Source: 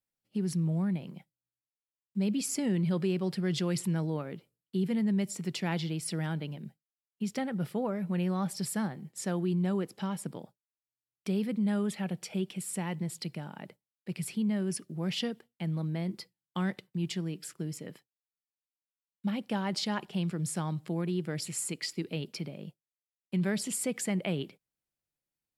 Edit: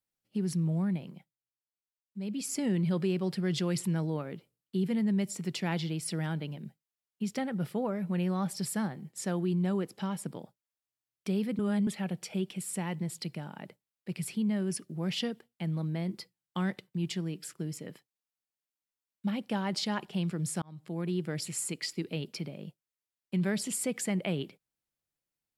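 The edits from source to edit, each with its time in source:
0.96–2.64 dip -8.5 dB, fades 0.43 s
11.59–11.87 reverse
20.62–21.11 fade in

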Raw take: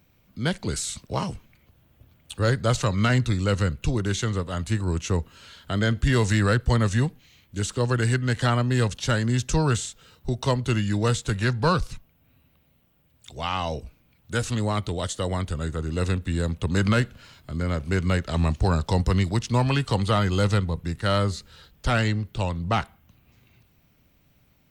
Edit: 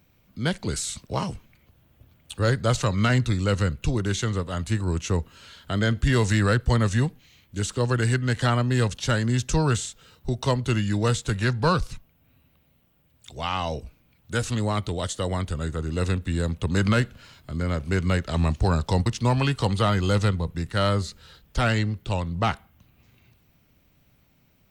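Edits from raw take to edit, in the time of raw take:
19.06–19.35 cut

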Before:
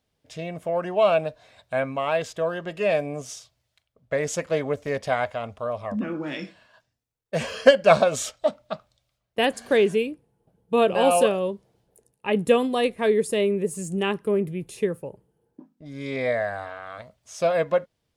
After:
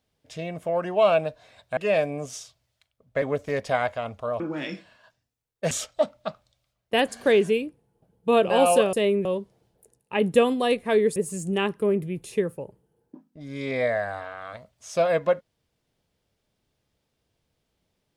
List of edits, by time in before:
1.77–2.73 cut
4.18–4.6 cut
5.78–6.1 cut
7.41–8.16 cut
13.29–13.61 move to 11.38

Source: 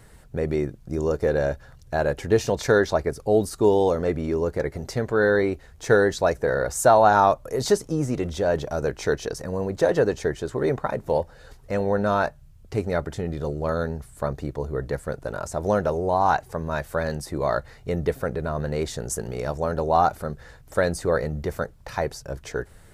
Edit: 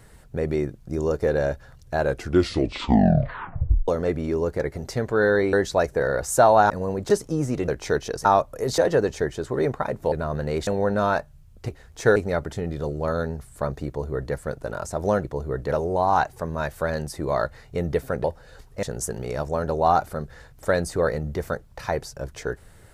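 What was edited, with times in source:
2.02 tape stop 1.86 s
5.53–6 move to 12.77
7.17–7.7 swap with 9.42–9.82
8.28–8.85 cut
11.16–11.75 swap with 18.37–18.92
14.48–14.96 copy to 15.85

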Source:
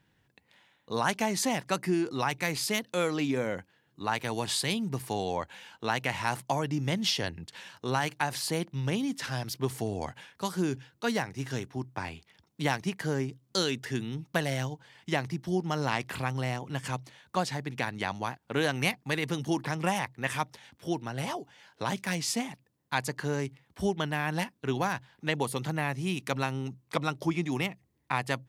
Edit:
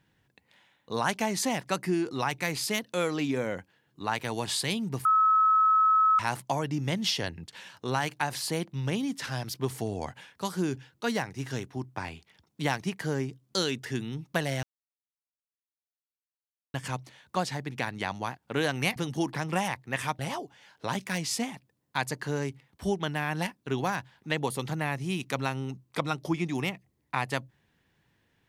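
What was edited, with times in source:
5.05–6.19 bleep 1290 Hz -18.5 dBFS
14.63–16.74 mute
18.96–19.27 cut
20.5–21.16 cut

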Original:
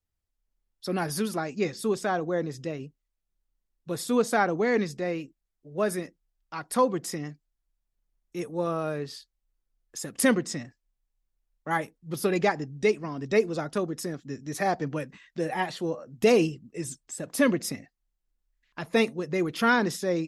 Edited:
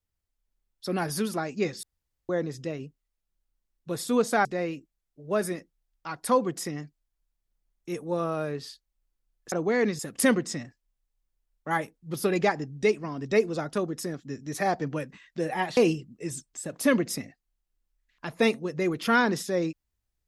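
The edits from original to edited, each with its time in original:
1.83–2.29 room tone
4.45–4.92 move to 9.99
15.77–16.31 cut

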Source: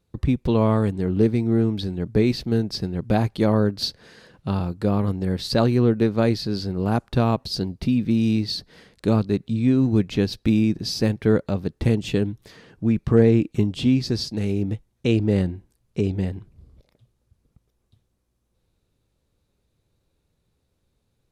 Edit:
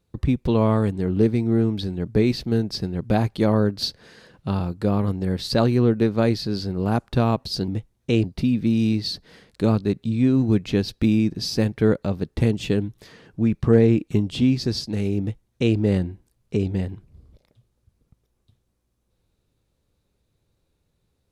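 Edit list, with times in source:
14.64–15.2 copy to 7.68

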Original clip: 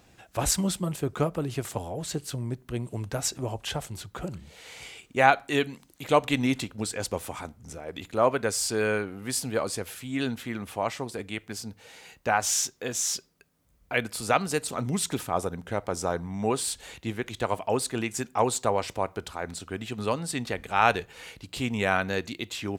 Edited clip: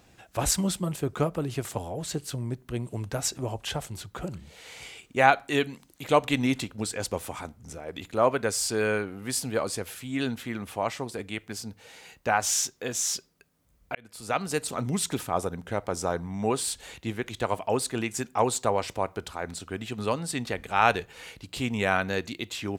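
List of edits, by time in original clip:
13.95–14.61 fade in

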